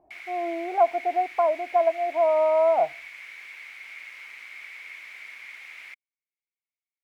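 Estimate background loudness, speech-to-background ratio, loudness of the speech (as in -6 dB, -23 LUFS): -40.5 LUFS, 17.0 dB, -23.5 LUFS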